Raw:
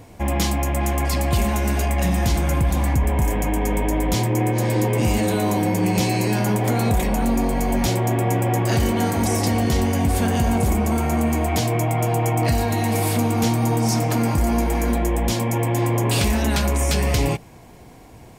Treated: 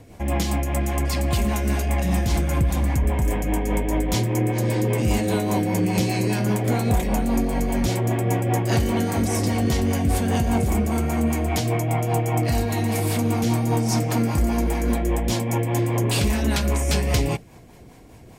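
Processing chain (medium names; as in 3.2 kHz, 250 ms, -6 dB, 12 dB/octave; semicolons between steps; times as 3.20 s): rotary cabinet horn 5 Hz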